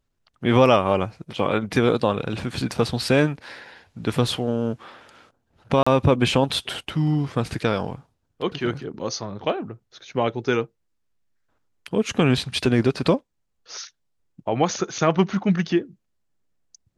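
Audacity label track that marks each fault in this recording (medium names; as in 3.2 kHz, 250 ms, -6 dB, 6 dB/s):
5.830000	5.870000	dropout 35 ms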